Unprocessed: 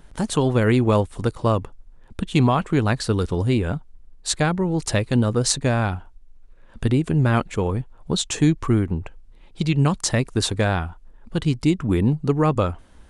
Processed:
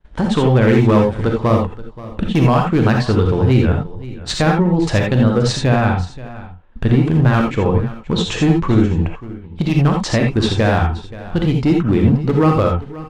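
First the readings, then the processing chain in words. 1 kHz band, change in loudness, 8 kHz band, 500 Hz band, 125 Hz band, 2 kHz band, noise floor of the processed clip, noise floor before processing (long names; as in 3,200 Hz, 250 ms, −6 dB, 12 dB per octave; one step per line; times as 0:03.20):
+6.0 dB, +6.0 dB, −5.0 dB, +6.0 dB, +6.5 dB, +5.5 dB, −35 dBFS, −48 dBFS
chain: low-pass filter 3,400 Hz 12 dB per octave
downward expander −36 dBFS
tape wow and flutter 29 cents
in parallel at +1.5 dB: downward compressor 6 to 1, threshold −29 dBFS, peak gain reduction 15.5 dB
on the sum: gain into a clipping stage and back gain 11.5 dB
on a send: single-tap delay 528 ms −17.5 dB
on the sum: reverb whose tail is shaped and stops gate 100 ms rising, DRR 1.5 dB
level +2 dB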